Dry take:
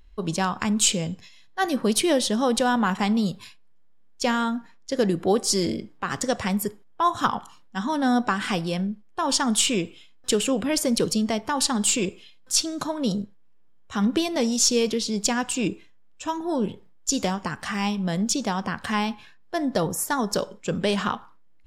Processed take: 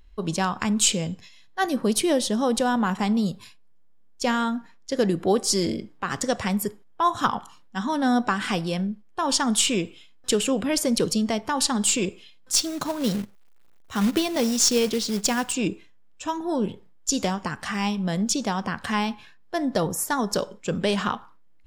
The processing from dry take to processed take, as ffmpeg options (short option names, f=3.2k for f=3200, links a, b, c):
-filter_complex "[0:a]asettb=1/sr,asplit=3[a][b][c];[a]atrim=end=1.664[d];[b]atrim=start=1.66:end=4.27,asetpts=PTS-STARTPTS,afade=t=in:d=0.004:c=qsin,afade=t=out:st=2.606:d=0.004:c=qsin,equalizer=f=2.4k:w=0.48:g=-3.5[e];[c]atrim=start=4.266[f];[d][e]acrossfade=d=0.004:c1=hsin:c2=qsin[g];[g][f]acrossfade=d=0.004:c1=qsin:c2=hsin,asettb=1/sr,asplit=3[h][i][j];[h]atrim=end=12.534[k];[i]atrim=start=12.53:end=15.52,asetpts=PTS-STARTPTS,afade=t=in:d=0.004:c=qsin,afade=t=out:st=2.986:d=0.004:c=qsin,acrusher=bits=3:mode=log:mix=0:aa=0.000001[l];[j]atrim=start=15.516[m];[k][l]acrossfade=d=0.004:c1=hsin:c2=qsin[n];[n][m]acrossfade=d=0.004:c1=qsin:c2=hsin"